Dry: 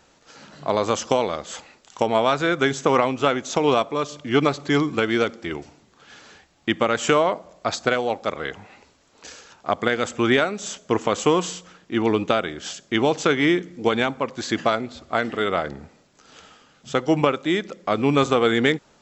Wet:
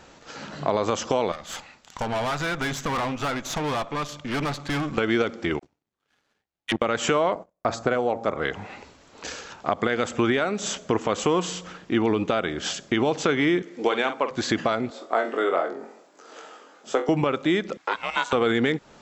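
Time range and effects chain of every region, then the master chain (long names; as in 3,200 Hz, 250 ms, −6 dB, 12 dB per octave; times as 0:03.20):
0:01.32–0:04.98: parametric band 400 Hz −9.5 dB 1.1 octaves + tube saturation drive 29 dB, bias 0.8
0:05.59–0:06.82: upward compression, threshold −48 dBFS + all-pass dispersion lows, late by 45 ms, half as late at 720 Hz + power curve on the samples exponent 2
0:07.35–0:08.42: hum removal 114.4 Hz, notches 12 + noise gate −44 dBFS, range −38 dB + parametric band 3,600 Hz −9 dB 1.9 octaves
0:13.62–0:14.31: high-pass filter 380 Hz + double-tracking delay 47 ms −10.5 dB
0:14.90–0:17.09: high-pass filter 320 Hz 24 dB per octave + parametric band 3,200 Hz −9 dB 2.2 octaves + flutter between parallel walls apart 3.8 metres, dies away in 0.23 s
0:17.77–0:18.33: high-pass filter 830 Hz 24 dB per octave + ring modulation 240 Hz
whole clip: brickwall limiter −10.5 dBFS; high-shelf EQ 5,000 Hz −7 dB; downward compressor 2 to 1, threshold −33 dBFS; level +8 dB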